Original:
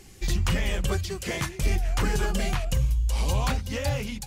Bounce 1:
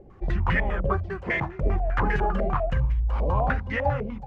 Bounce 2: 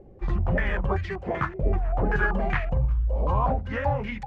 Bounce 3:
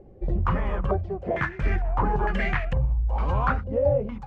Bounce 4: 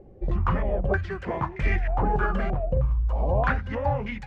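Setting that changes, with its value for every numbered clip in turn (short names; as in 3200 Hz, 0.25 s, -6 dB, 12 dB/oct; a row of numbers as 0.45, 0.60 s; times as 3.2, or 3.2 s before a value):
stepped low-pass, rate: 10, 5.2, 2.2, 3.2 Hz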